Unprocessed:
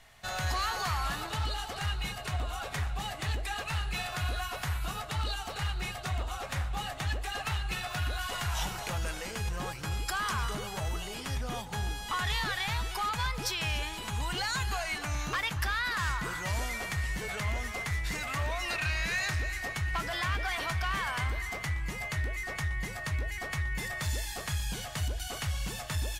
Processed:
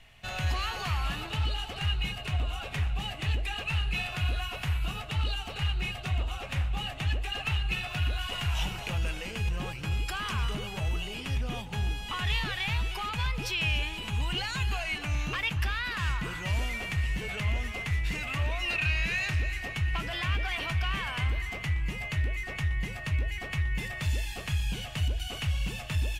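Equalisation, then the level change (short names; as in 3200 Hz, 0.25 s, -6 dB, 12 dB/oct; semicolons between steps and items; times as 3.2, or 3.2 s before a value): low shelf 500 Hz +11 dB; bell 2700 Hz +13.5 dB 0.67 oct; -6.5 dB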